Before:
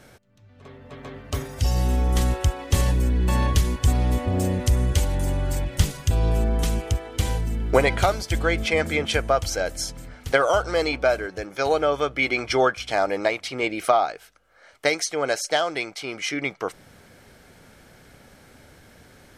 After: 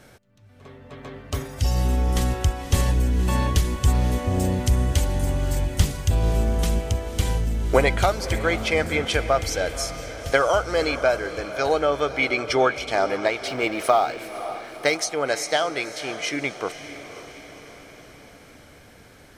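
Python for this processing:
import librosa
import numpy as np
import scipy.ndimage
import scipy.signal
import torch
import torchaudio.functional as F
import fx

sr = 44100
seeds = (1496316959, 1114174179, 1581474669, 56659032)

y = fx.law_mismatch(x, sr, coded='mu', at=(13.47, 14.97))
y = fx.echo_diffused(y, sr, ms=528, feedback_pct=58, wet_db=-12.5)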